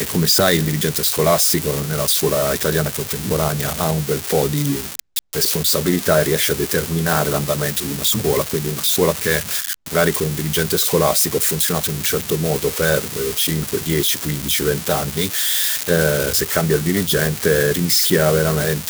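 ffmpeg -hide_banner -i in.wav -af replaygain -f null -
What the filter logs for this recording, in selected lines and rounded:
track_gain = -0.2 dB
track_peak = 0.587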